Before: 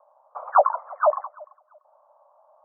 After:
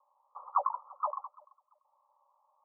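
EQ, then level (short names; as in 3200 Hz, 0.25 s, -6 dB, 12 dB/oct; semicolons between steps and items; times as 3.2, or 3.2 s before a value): HPF 790 Hz 12 dB/oct; brick-wall FIR low-pass 1400 Hz; fixed phaser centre 1000 Hz, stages 8; -7.0 dB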